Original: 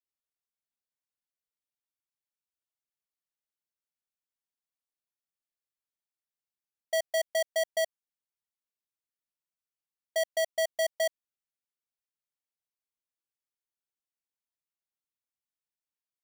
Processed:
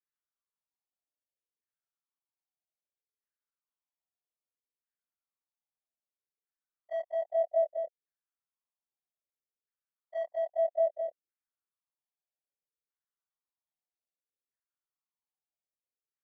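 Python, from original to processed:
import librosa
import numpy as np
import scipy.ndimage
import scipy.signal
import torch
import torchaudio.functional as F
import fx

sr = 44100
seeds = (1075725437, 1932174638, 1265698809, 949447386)

y = fx.frame_reverse(x, sr, frame_ms=61.0)
y = fx.filter_lfo_lowpass(y, sr, shape='saw_down', hz=0.62, low_hz=410.0, high_hz=1800.0, q=4.0)
y = F.gain(torch.from_numpy(y), -5.0).numpy()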